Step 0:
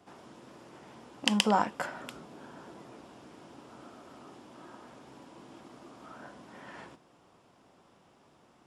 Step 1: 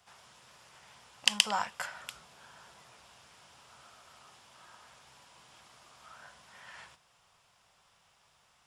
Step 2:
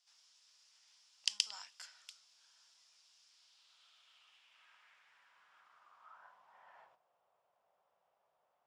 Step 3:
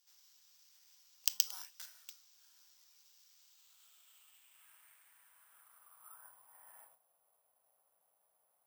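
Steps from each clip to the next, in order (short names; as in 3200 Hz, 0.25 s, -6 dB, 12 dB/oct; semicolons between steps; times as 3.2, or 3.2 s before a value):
passive tone stack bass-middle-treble 10-0-10; gain +5 dB
band-pass sweep 5200 Hz -> 610 Hz, 3.24–7.15; gain -2.5 dB
careless resampling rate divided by 4×, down none, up zero stuff; gain -3.5 dB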